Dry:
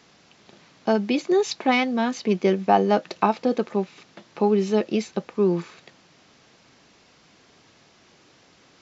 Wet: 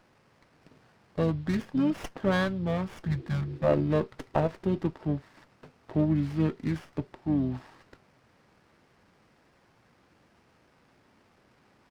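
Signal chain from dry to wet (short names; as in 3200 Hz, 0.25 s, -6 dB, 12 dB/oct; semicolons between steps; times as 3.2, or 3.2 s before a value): harmoniser -12 st -15 dB, -7 st -15 dB; spectral repair 2.29–2.71, 330–680 Hz before; speed mistake 45 rpm record played at 33 rpm; running maximum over 9 samples; gain -6.5 dB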